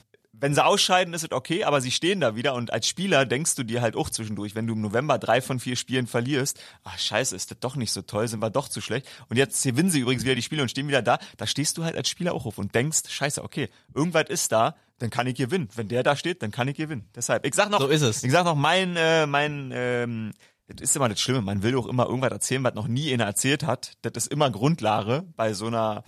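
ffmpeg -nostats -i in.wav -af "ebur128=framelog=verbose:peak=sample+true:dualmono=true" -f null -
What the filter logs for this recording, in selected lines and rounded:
Integrated loudness:
  I:         -21.7 LUFS
  Threshold: -31.8 LUFS
Loudness range:
  LRA:         3.7 LU
  Threshold: -41.9 LUFS
  LRA low:   -23.4 LUFS
  LRA high:  -19.7 LUFS
Sample peak:
  Peak:       -7.1 dBFS
True peak:
  Peak:       -7.1 dBFS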